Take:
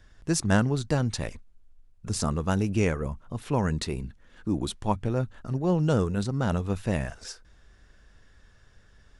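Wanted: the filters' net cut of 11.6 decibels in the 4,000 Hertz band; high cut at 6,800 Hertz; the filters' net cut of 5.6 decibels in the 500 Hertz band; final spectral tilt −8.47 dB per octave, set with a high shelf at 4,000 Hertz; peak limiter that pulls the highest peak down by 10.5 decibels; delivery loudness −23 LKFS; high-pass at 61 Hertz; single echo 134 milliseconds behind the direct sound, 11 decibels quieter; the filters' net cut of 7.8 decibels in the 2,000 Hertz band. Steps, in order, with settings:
high-pass filter 61 Hz
low-pass filter 6,800 Hz
parametric band 500 Hz −6.5 dB
parametric band 2,000 Hz −7.5 dB
high-shelf EQ 4,000 Hz −8.5 dB
parametric band 4,000 Hz −6.5 dB
brickwall limiter −23.5 dBFS
single-tap delay 134 ms −11 dB
level +10.5 dB

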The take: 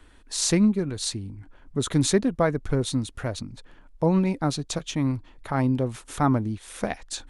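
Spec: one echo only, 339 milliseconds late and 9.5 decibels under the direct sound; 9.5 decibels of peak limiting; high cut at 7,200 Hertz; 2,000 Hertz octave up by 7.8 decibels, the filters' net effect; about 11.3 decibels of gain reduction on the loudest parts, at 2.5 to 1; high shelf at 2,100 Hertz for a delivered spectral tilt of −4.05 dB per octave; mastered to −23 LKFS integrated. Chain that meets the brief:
low-pass filter 7,200 Hz
parametric band 2,000 Hz +5.5 dB
high-shelf EQ 2,100 Hz +8 dB
downward compressor 2.5 to 1, threshold −33 dBFS
brickwall limiter −24 dBFS
single-tap delay 339 ms −9.5 dB
level +11.5 dB

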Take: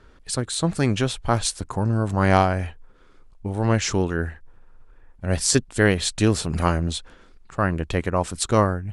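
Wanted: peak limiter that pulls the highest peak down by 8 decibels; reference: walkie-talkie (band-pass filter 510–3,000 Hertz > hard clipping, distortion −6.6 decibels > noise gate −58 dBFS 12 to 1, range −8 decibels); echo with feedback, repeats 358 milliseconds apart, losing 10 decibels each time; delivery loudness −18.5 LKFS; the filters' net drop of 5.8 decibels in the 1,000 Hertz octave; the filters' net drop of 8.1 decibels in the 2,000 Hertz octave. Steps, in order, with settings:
parametric band 1,000 Hz −5 dB
parametric band 2,000 Hz −8 dB
brickwall limiter −11 dBFS
band-pass filter 510–3,000 Hz
repeating echo 358 ms, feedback 32%, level −10 dB
hard clipping −28.5 dBFS
noise gate −58 dBFS 12 to 1, range −8 dB
level +18.5 dB

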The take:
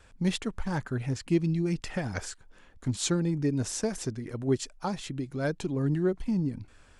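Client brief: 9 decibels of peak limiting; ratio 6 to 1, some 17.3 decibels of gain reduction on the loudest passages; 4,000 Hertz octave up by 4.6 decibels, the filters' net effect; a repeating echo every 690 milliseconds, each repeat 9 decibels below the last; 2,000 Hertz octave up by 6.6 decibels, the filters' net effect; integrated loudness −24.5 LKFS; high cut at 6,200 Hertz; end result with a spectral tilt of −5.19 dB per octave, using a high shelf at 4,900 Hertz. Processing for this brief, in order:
low-pass filter 6,200 Hz
parametric band 2,000 Hz +8 dB
parametric band 4,000 Hz +6 dB
high-shelf EQ 4,900 Hz −4 dB
downward compressor 6 to 1, threshold −40 dBFS
brickwall limiter −35 dBFS
repeating echo 690 ms, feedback 35%, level −9 dB
level +20 dB

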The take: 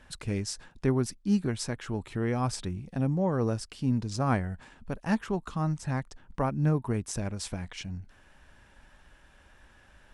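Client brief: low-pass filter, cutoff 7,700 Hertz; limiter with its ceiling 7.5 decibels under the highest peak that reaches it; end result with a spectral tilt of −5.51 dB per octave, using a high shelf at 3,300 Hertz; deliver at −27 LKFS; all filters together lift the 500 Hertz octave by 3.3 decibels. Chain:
low-pass filter 7,700 Hz
parametric band 500 Hz +4 dB
high-shelf EQ 3,300 Hz +6.5 dB
level +4.5 dB
brickwall limiter −14.5 dBFS

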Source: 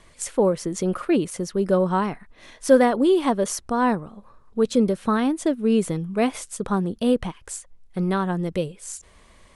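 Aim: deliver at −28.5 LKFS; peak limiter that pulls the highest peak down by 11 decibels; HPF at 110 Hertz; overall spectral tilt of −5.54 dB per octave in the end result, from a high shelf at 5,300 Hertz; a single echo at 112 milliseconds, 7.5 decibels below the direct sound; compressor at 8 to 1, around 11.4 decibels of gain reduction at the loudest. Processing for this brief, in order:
high-pass filter 110 Hz
high-shelf EQ 5,300 Hz −8 dB
downward compressor 8 to 1, threshold −21 dBFS
brickwall limiter −24 dBFS
single-tap delay 112 ms −7.5 dB
level +4 dB

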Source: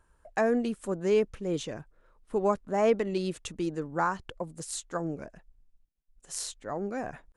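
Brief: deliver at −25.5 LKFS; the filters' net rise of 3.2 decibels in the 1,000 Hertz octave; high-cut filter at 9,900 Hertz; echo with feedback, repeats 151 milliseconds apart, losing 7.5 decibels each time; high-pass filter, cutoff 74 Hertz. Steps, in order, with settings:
high-pass filter 74 Hz
low-pass filter 9,900 Hz
parametric band 1,000 Hz +4 dB
repeating echo 151 ms, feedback 42%, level −7.5 dB
level +3.5 dB

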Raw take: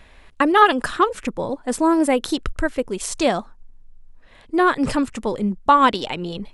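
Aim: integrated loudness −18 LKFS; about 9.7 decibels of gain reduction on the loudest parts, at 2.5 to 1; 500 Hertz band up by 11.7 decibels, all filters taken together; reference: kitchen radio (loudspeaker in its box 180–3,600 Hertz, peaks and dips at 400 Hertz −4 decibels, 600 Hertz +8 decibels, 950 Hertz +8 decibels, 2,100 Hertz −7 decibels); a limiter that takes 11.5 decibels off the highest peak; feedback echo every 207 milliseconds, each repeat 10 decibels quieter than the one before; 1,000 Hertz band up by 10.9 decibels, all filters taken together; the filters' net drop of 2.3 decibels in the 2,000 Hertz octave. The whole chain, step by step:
parametric band 500 Hz +8.5 dB
parametric band 1,000 Hz +7 dB
parametric band 2,000 Hz −6 dB
downward compressor 2.5 to 1, threshold −18 dBFS
brickwall limiter −13.5 dBFS
loudspeaker in its box 180–3,600 Hz, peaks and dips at 400 Hz −4 dB, 600 Hz +8 dB, 950 Hz +8 dB, 2,100 Hz −7 dB
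repeating echo 207 ms, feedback 32%, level −10 dB
level +2.5 dB

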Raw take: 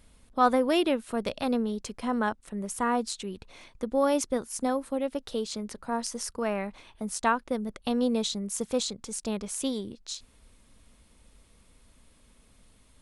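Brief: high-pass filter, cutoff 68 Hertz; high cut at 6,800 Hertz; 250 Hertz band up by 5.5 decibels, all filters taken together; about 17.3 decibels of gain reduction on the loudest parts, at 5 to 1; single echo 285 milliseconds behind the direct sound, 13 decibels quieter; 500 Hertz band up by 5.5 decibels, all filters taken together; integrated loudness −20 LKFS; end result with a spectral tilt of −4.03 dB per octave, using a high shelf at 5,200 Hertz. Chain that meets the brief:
high-pass filter 68 Hz
low-pass filter 6,800 Hz
parametric band 250 Hz +5 dB
parametric band 500 Hz +5 dB
high-shelf EQ 5,200 Hz +4 dB
downward compressor 5 to 1, threshold −35 dBFS
single-tap delay 285 ms −13 dB
level +18.5 dB

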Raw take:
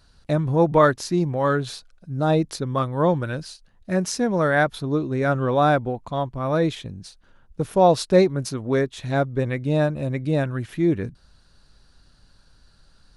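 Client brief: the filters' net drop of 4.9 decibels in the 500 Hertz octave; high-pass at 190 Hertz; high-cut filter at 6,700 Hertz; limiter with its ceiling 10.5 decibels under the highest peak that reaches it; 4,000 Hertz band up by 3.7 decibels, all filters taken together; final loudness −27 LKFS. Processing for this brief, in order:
high-pass filter 190 Hz
low-pass filter 6,700 Hz
parametric band 500 Hz −6 dB
parametric band 4,000 Hz +5 dB
level +0.5 dB
brickwall limiter −14 dBFS

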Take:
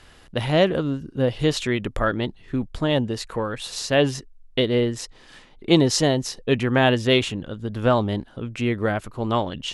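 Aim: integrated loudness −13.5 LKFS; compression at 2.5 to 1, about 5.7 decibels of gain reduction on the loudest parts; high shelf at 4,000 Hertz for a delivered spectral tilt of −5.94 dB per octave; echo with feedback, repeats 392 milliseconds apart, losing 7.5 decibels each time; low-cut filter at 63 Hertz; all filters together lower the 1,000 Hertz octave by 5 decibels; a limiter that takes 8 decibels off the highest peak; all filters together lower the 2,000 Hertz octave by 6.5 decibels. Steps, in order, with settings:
high-pass filter 63 Hz
parametric band 1,000 Hz −5.5 dB
parametric band 2,000 Hz −5 dB
high-shelf EQ 4,000 Hz −7 dB
downward compressor 2.5 to 1, threshold −21 dBFS
brickwall limiter −19.5 dBFS
repeating echo 392 ms, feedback 42%, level −7.5 dB
level +16 dB

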